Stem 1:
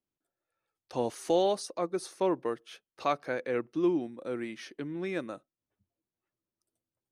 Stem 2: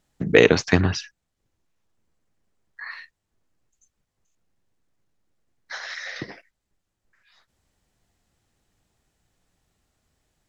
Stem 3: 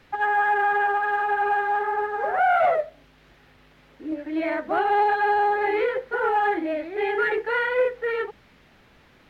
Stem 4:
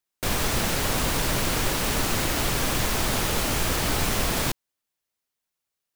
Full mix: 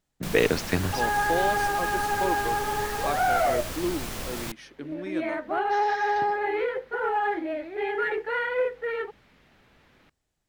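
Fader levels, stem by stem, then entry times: -2.0, -7.5, -4.0, -10.0 dB; 0.00, 0.00, 0.80, 0.00 s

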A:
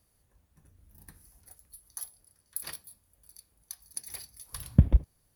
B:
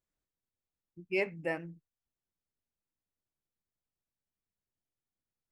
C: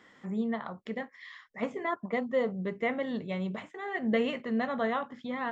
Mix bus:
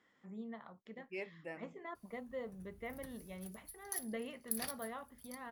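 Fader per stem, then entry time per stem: -2.0, -12.5, -15.0 dB; 1.95, 0.00, 0.00 s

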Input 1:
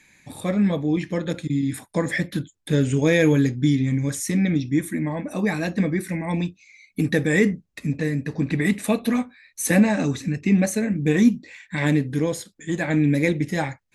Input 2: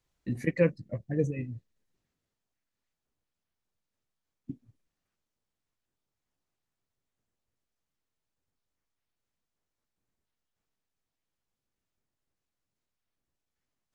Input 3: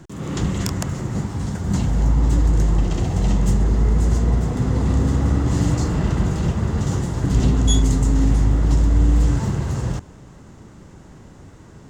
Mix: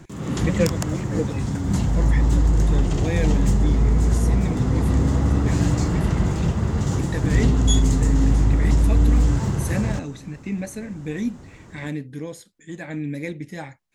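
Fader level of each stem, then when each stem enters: -9.5, +2.5, -1.0 dB; 0.00, 0.00, 0.00 s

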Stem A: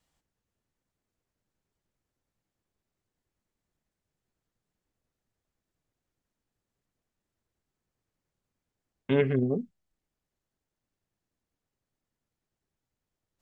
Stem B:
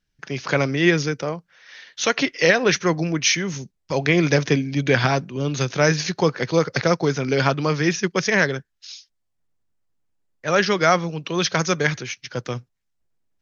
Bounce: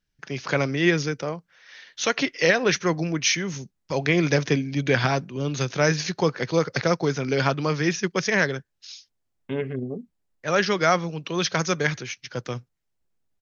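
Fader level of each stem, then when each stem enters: -4.0, -3.0 dB; 0.40, 0.00 s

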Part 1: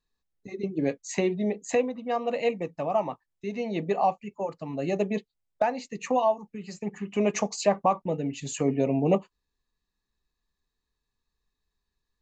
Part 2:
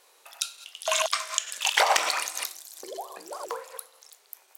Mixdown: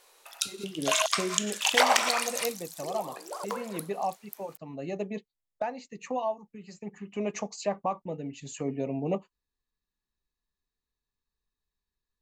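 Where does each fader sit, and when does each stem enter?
-7.0, -0.5 dB; 0.00, 0.00 s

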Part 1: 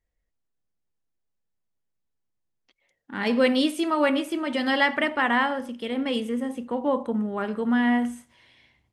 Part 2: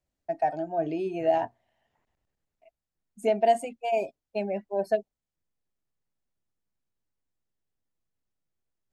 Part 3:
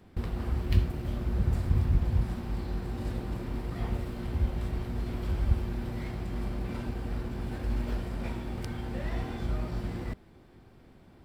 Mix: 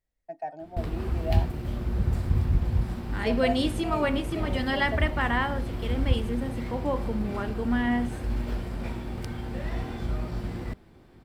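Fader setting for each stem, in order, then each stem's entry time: -4.5, -9.0, +1.5 dB; 0.00, 0.00, 0.60 s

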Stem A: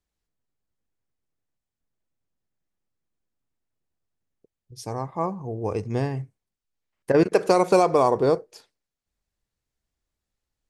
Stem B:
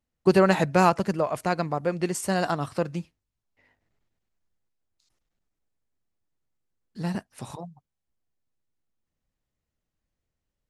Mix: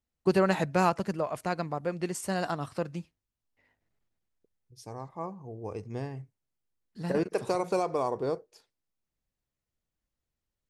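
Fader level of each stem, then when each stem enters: -10.5, -5.5 dB; 0.00, 0.00 s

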